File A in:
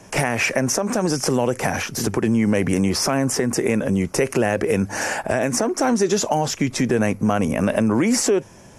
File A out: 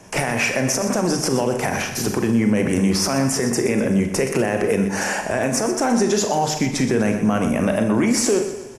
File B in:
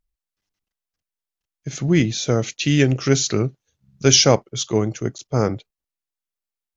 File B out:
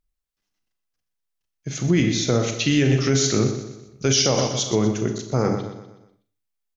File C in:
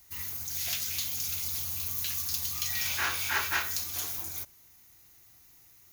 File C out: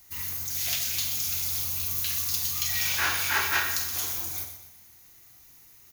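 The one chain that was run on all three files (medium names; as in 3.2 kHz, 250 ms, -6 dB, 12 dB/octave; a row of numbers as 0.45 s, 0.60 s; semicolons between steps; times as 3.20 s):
hum notches 50/100/150 Hz; on a send: feedback delay 123 ms, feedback 45%, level -11 dB; on the sum: Schroeder reverb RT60 0.43 s, combs from 30 ms, DRR 7 dB; loudness maximiser +8 dB; peak normalisation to -9 dBFS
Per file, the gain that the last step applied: -8.0 dB, -8.0 dB, -5.0 dB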